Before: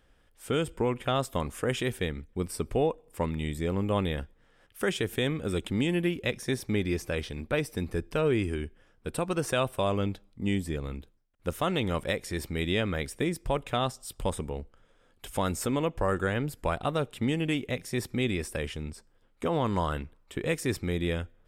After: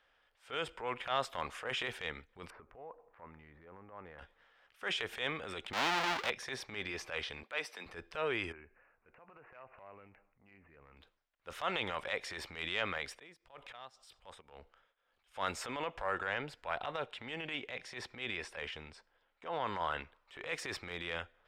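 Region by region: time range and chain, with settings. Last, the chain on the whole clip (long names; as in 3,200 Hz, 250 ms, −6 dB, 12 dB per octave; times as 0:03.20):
0:02.50–0:04.19: low-pass filter 1,700 Hz 24 dB per octave + downward compressor 3 to 1, threshold −40 dBFS
0:05.73–0:06.30: each half-wave held at its own peak + low-shelf EQ 280 Hz −7.5 dB + multiband upward and downward compressor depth 100%
0:07.43–0:07.86: Butterworth high-pass 160 Hz + low-shelf EQ 400 Hz −10.5 dB
0:08.52–0:10.97: downward compressor 16 to 1, threshold −40 dBFS + high-frequency loss of the air 350 metres + bad sample-rate conversion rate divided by 8×, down none, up filtered
0:12.98–0:15.32: volume swells 195 ms + shaped tremolo triangle 1.9 Hz, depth 95%
0:16.04–0:19.99: Chebyshev low-pass filter 11,000 Hz + high-shelf EQ 6,900 Hz −8.5 dB + notch filter 1,200 Hz
whole clip: three-way crossover with the lows and the highs turned down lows −21 dB, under 590 Hz, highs −22 dB, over 4,900 Hz; transient designer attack −10 dB, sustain +5 dB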